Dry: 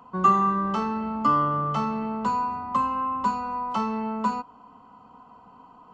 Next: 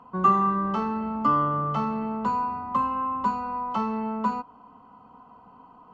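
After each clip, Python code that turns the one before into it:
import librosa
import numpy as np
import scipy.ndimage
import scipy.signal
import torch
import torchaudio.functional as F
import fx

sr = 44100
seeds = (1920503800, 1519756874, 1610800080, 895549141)

y = fx.lowpass(x, sr, hz=2500.0, slope=6)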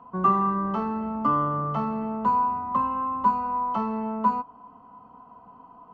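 y = fx.high_shelf(x, sr, hz=2700.0, db=-10.0)
y = fx.small_body(y, sr, hz=(680.0, 1000.0, 1800.0), ring_ms=95, db=8)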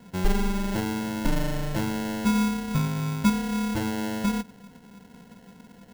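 y = fx.sample_hold(x, sr, seeds[0], rate_hz=1200.0, jitter_pct=0)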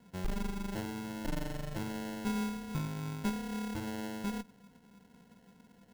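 y = fx.tube_stage(x, sr, drive_db=20.0, bias=0.7)
y = y * 10.0 ** (-7.0 / 20.0)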